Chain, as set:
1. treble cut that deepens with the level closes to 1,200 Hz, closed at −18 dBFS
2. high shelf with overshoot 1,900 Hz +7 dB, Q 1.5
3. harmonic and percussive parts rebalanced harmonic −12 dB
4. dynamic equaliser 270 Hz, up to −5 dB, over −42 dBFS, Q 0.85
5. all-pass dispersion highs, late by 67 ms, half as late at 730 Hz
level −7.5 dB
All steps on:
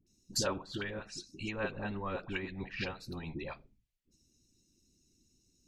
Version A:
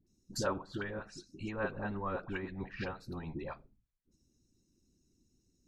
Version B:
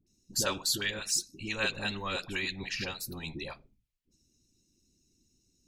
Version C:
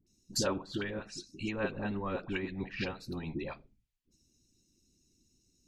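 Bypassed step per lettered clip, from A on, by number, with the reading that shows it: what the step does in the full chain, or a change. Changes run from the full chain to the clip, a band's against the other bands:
2, 4 kHz band −8.0 dB
1, 8 kHz band +9.0 dB
4, change in integrated loudness +1.5 LU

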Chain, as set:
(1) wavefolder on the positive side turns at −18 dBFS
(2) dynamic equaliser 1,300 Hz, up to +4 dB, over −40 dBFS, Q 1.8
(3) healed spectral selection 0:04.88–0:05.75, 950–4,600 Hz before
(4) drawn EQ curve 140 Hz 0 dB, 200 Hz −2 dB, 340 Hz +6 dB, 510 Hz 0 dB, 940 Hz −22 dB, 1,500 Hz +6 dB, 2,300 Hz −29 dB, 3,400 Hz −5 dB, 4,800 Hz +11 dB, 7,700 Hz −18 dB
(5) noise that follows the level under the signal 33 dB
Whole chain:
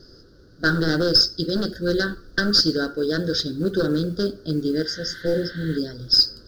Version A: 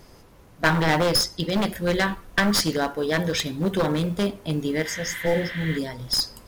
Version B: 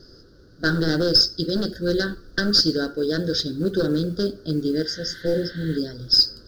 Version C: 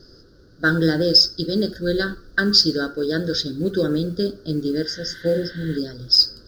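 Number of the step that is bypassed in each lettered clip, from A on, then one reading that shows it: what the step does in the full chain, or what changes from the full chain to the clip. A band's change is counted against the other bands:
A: 4, 1 kHz band +8.0 dB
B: 2, 1 kHz band −3.0 dB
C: 1, distortion level −7 dB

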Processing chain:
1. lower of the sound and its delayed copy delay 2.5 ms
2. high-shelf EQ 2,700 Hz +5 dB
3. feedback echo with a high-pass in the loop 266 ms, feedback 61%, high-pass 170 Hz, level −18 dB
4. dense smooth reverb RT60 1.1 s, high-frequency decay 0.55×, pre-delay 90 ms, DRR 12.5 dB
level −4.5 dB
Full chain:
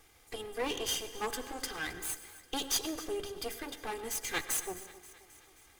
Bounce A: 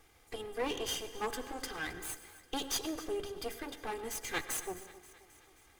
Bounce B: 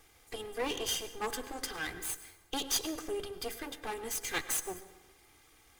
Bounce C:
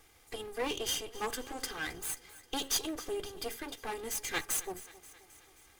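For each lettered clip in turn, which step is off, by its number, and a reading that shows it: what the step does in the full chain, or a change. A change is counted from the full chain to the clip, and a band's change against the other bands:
2, 8 kHz band −4.0 dB
3, echo-to-direct ratio −11.0 dB to −12.5 dB
4, echo-to-direct ratio −11.0 dB to −16.0 dB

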